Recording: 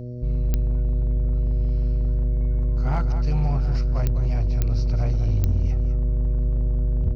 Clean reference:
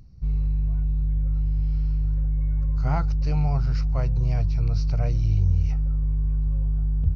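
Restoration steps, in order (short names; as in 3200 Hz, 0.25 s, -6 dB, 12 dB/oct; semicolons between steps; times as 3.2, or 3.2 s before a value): clip repair -15.5 dBFS; de-click; de-hum 122.4 Hz, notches 5; inverse comb 0.203 s -10.5 dB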